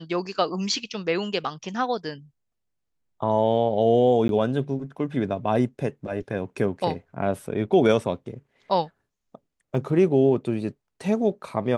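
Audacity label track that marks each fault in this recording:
4.280000	4.290000	gap 12 ms
9.750000	9.750000	gap 2.1 ms

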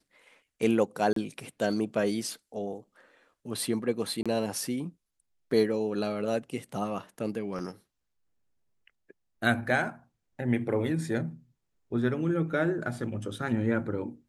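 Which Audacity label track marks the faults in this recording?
1.130000	1.160000	gap 33 ms
4.230000	4.260000	gap 26 ms
7.590000	7.590000	gap 4.4 ms

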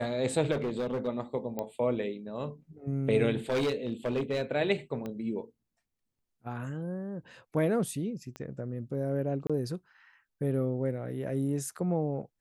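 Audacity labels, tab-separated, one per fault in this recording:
0.510000	1.080000	clipped -27.5 dBFS
1.590000	1.590000	pop -20 dBFS
3.500000	4.420000	clipped -25 dBFS
5.060000	5.060000	pop -25 dBFS
8.360000	8.360000	pop -27 dBFS
9.470000	9.500000	gap 26 ms

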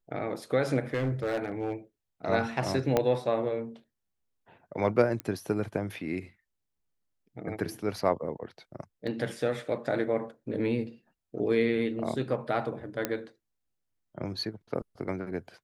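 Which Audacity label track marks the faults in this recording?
0.940000	1.730000	clipped -25 dBFS
2.970000	2.970000	pop -11 dBFS
5.200000	5.200000	pop -18 dBFS
9.070000	9.070000	gap 2.9 ms
13.050000	13.050000	pop -12 dBFS

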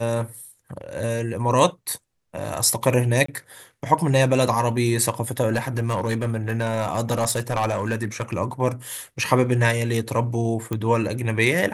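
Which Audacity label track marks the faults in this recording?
3.260000	3.280000	gap 24 ms
5.530000	8.390000	clipped -17 dBFS
10.730000	10.730000	pop -14 dBFS

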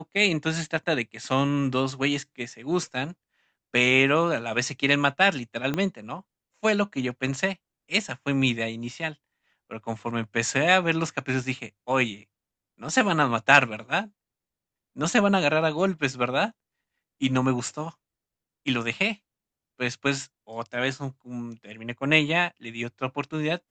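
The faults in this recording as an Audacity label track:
5.740000	5.740000	pop -14 dBFS

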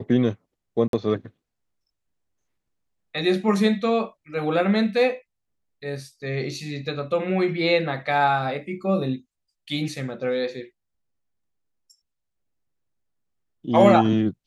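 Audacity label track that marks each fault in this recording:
0.880000	0.930000	gap 52 ms

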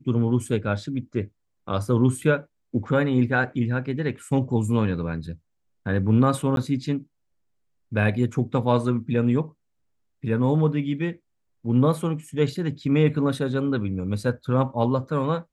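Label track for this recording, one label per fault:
6.560000	6.570000	gap 12 ms

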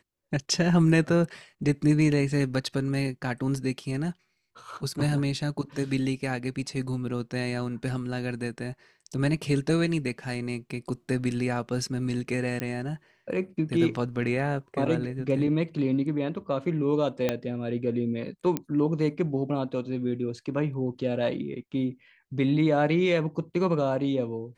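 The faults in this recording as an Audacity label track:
12.600000	12.600000	pop -16 dBFS
17.290000	17.290000	pop -11 dBFS
18.570000	18.570000	pop -13 dBFS

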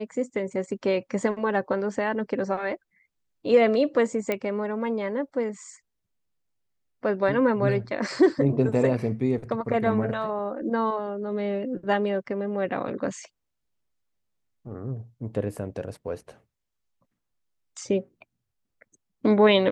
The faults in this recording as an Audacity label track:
4.320000	4.320000	pop -13 dBFS

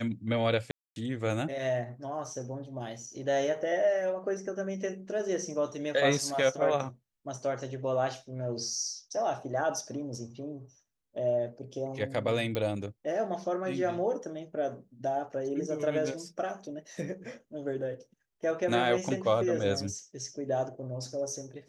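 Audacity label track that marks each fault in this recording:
0.710000	0.960000	gap 0.251 s
12.550000	12.550000	pop -19 dBFS

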